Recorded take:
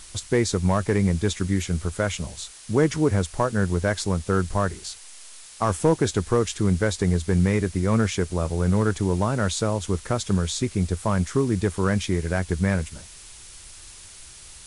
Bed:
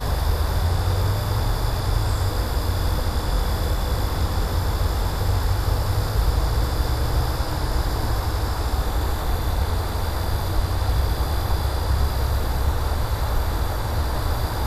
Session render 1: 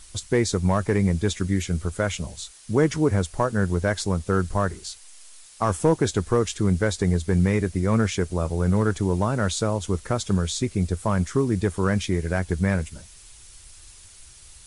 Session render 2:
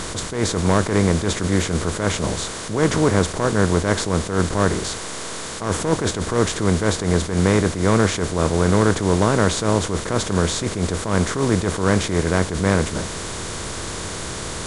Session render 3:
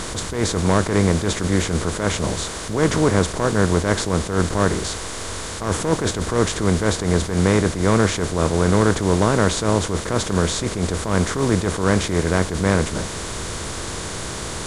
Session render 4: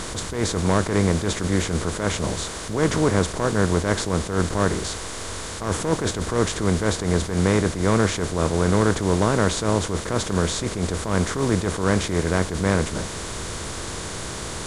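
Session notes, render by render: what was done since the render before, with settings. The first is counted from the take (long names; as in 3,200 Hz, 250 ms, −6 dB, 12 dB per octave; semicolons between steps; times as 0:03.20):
broadband denoise 6 dB, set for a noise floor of −45 dBFS
compressor on every frequency bin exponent 0.4; level that may rise only so fast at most 100 dB per second
mix in bed −16.5 dB
level −2.5 dB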